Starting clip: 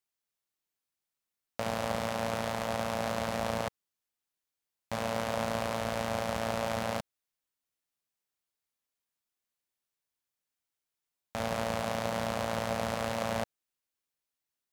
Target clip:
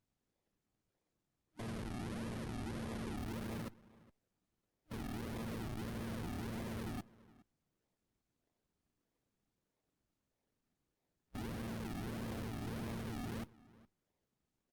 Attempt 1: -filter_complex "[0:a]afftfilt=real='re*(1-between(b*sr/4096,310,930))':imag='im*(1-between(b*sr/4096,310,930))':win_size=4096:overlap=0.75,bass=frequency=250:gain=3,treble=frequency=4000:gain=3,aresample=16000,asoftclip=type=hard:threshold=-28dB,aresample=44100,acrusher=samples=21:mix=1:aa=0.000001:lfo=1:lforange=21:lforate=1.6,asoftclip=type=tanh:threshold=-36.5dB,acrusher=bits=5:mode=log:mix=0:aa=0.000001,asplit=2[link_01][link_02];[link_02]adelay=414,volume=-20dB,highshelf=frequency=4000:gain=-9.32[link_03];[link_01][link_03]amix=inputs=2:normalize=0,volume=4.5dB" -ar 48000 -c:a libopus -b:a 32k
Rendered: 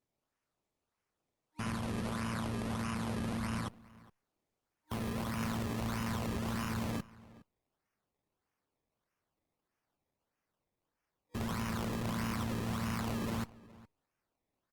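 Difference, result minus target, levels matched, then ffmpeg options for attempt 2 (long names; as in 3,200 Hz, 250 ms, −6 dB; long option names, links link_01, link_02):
sample-and-hold swept by an LFO: distortion −5 dB; soft clipping: distortion −5 dB
-filter_complex "[0:a]afftfilt=real='re*(1-between(b*sr/4096,310,930))':imag='im*(1-between(b*sr/4096,310,930))':win_size=4096:overlap=0.75,bass=frequency=250:gain=3,treble=frequency=4000:gain=3,aresample=16000,asoftclip=type=hard:threshold=-28dB,aresample=44100,acrusher=samples=60:mix=1:aa=0.000001:lfo=1:lforange=60:lforate=1.6,asoftclip=type=tanh:threshold=-44.5dB,acrusher=bits=5:mode=log:mix=0:aa=0.000001,asplit=2[link_01][link_02];[link_02]adelay=414,volume=-20dB,highshelf=frequency=4000:gain=-9.32[link_03];[link_01][link_03]amix=inputs=2:normalize=0,volume=4.5dB" -ar 48000 -c:a libopus -b:a 32k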